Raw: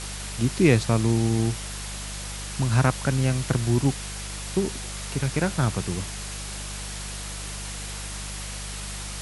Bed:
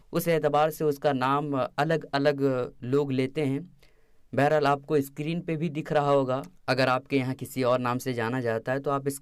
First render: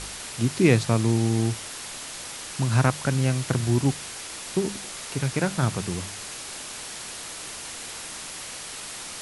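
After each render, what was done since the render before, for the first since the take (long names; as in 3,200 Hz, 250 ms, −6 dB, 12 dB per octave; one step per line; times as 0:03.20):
hum removal 50 Hz, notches 4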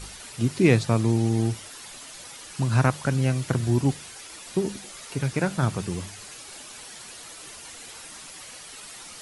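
broadband denoise 9 dB, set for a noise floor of −38 dBFS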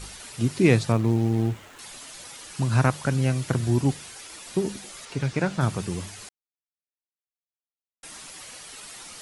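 0:00.92–0:01.79: running median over 9 samples
0:05.05–0:05.61: low-pass filter 6,500 Hz
0:06.29–0:08.03: silence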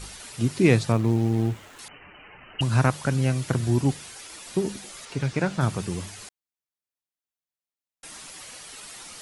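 0:01.88–0:02.61: voice inversion scrambler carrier 3,000 Hz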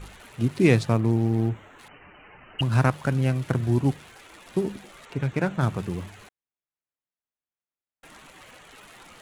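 adaptive Wiener filter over 9 samples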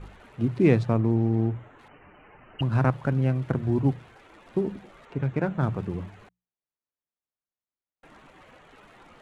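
low-pass filter 1,200 Hz 6 dB per octave
mains-hum notches 60/120/180 Hz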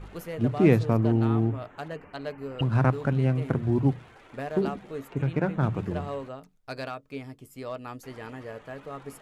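mix in bed −12 dB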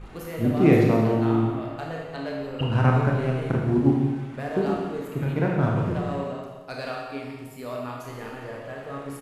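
single-tap delay 176 ms −12 dB
four-comb reverb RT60 1.2 s, combs from 25 ms, DRR −1.5 dB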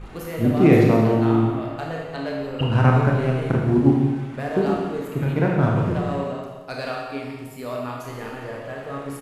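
level +3.5 dB
brickwall limiter −3 dBFS, peak gain reduction 2 dB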